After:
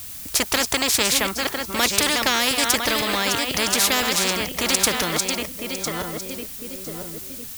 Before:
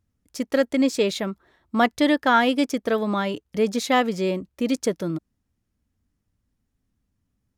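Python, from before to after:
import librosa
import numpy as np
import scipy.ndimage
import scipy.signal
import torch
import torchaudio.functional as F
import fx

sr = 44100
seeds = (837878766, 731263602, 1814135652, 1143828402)

y = fx.reverse_delay_fb(x, sr, ms=502, feedback_pct=41, wet_db=-10.5)
y = fx.dmg_noise_colour(y, sr, seeds[0], colour='blue', level_db=-59.0)
y = fx.spectral_comp(y, sr, ratio=4.0)
y = F.gain(torch.from_numpy(y), 6.0).numpy()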